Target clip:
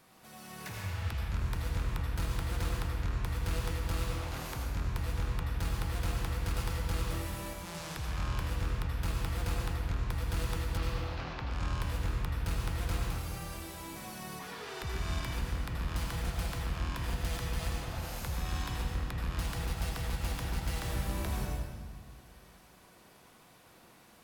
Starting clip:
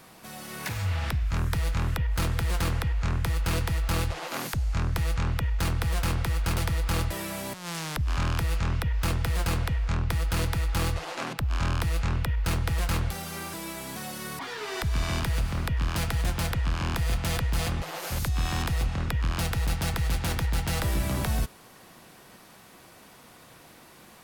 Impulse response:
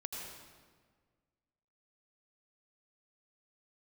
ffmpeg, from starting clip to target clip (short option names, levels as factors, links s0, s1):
-filter_complex "[0:a]asettb=1/sr,asplit=3[s0][s1][s2];[s0]atrim=end=10.774[s3];[s1]atrim=start=10.77:end=11.4,asetpts=PTS-STARTPTS,afade=t=in:d=0.004:c=qsin,afade=t=out:st=0.626:d=0.004:c=qsin,lowpass=f=5300:w=0.5412,lowpass=f=5300:w=1.3066[s4];[s2]atrim=start=11.396[s5];[s3][s4]acrossfade=d=0.004:c1=hsin:c2=qsin[s6];[s6][s5]acrossfade=d=0.004:c1=qsin:c2=hsin[s7];[1:a]atrim=start_sample=2205[s8];[s7][s8]afir=irnorm=-1:irlink=0,volume=0.447"